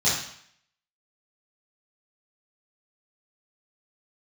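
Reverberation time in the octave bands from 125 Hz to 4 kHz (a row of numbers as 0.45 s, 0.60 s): 0.60 s, 0.60 s, 0.60 s, 0.65 s, 0.70 s, 0.65 s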